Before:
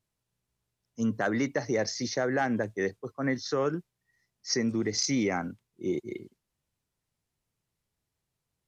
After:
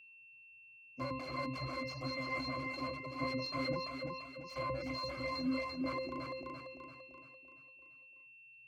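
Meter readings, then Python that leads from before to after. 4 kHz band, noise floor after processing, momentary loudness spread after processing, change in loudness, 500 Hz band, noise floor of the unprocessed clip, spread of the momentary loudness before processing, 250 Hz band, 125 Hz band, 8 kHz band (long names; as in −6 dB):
−6.5 dB, −59 dBFS, 19 LU, −9.5 dB, −10.5 dB, −85 dBFS, 11 LU, −10.5 dB, −7.5 dB, can't be measured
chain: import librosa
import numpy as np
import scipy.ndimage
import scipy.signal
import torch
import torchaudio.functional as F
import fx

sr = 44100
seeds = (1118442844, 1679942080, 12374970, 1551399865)

p1 = fx.block_float(x, sr, bits=7)
p2 = (np.mod(10.0 ** (28.0 / 20.0) * p1 + 1.0, 2.0) - 1.0) / 10.0 ** (28.0 / 20.0)
p3 = scipy.signal.sosfilt(scipy.signal.butter(2, 73.0, 'highpass', fs=sr, output='sos'), p2)
p4 = p3 + fx.echo_feedback(p3, sr, ms=340, feedback_pct=49, wet_db=-3.0, dry=0)
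p5 = fx.dereverb_blind(p4, sr, rt60_s=1.4)
p6 = fx.bass_treble(p5, sr, bass_db=-7, treble_db=0)
p7 = fx.octave_resonator(p6, sr, note='C', decay_s=0.26)
p8 = fx.rider(p7, sr, range_db=4, speed_s=2.0)
p9 = p8 + 10.0 ** (-69.0 / 20.0) * np.sin(2.0 * np.pi * 2700.0 * np.arange(len(p8)) / sr)
p10 = fx.sustainer(p9, sr, db_per_s=53.0)
y = F.gain(torch.from_numpy(p10), 13.0).numpy()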